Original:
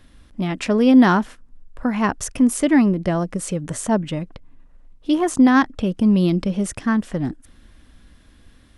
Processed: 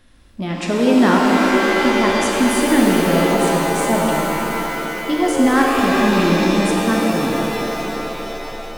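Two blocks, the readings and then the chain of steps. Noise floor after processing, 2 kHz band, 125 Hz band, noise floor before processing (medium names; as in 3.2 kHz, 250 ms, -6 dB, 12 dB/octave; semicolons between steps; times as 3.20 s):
-31 dBFS, +8.0 dB, +0.5 dB, -52 dBFS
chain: bass shelf 200 Hz -4.5 dB; pitch-shifted reverb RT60 3.7 s, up +7 st, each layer -2 dB, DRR -2 dB; trim -1 dB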